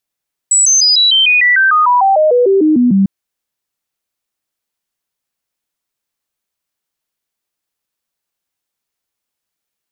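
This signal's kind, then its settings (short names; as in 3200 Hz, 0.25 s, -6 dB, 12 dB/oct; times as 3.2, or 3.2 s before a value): stepped sine 7850 Hz down, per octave 3, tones 17, 0.15 s, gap 0.00 s -6.5 dBFS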